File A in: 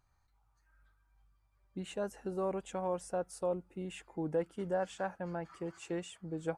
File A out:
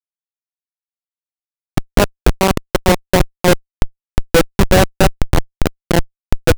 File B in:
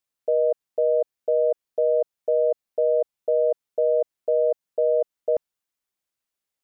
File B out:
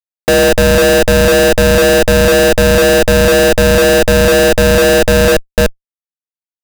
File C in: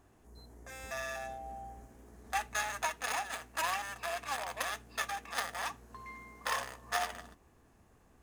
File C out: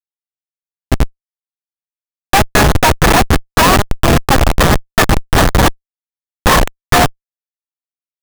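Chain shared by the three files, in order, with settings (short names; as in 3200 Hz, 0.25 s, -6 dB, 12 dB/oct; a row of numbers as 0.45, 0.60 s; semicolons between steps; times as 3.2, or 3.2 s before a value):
delay with a stepping band-pass 0.147 s, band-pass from 200 Hz, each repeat 1.4 oct, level -5 dB; harmonic-percussive split percussive +4 dB; Schmitt trigger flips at -29.5 dBFS; normalise peaks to -2 dBFS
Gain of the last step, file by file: +29.5, +15.0, +29.5 dB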